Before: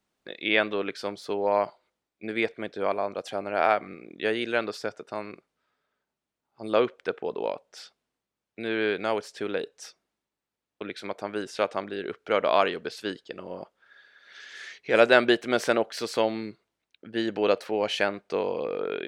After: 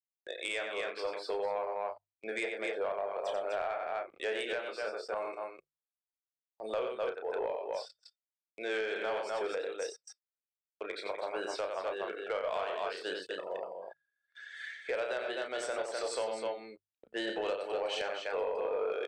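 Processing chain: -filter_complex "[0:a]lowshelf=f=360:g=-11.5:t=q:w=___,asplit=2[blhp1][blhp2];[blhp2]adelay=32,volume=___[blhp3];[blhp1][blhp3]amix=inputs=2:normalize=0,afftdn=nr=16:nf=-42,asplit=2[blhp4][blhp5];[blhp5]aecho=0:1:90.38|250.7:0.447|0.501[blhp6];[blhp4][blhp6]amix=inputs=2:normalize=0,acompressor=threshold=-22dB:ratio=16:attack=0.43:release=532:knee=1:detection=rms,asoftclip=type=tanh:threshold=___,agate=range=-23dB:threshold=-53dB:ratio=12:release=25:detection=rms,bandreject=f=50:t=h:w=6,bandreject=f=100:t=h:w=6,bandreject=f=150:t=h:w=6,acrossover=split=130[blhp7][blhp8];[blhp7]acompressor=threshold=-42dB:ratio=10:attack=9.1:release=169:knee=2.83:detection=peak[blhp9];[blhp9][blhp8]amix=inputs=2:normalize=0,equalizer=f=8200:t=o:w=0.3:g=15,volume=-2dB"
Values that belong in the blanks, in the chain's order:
1.5, -6dB, -22.5dB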